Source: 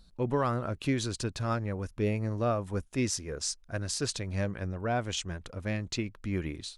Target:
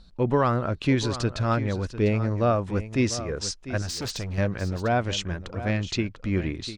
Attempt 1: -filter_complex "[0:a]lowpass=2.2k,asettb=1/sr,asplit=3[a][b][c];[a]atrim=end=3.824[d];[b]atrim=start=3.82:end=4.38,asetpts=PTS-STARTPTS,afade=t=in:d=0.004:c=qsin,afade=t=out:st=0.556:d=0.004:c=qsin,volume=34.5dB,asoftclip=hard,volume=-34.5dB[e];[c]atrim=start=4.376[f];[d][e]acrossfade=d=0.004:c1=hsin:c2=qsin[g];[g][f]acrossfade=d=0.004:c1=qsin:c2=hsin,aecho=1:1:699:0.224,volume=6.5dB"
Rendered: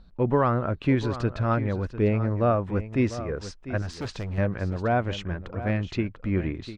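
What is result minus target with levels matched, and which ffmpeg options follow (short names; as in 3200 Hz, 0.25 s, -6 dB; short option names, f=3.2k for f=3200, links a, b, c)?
4000 Hz band -8.5 dB
-filter_complex "[0:a]lowpass=5.4k,asettb=1/sr,asplit=3[a][b][c];[a]atrim=end=3.824[d];[b]atrim=start=3.82:end=4.38,asetpts=PTS-STARTPTS,afade=t=in:d=0.004:c=qsin,afade=t=out:st=0.556:d=0.004:c=qsin,volume=34.5dB,asoftclip=hard,volume=-34.5dB[e];[c]atrim=start=4.376[f];[d][e]acrossfade=d=0.004:c1=hsin:c2=qsin[g];[g][f]acrossfade=d=0.004:c1=qsin:c2=hsin,aecho=1:1:699:0.224,volume=6.5dB"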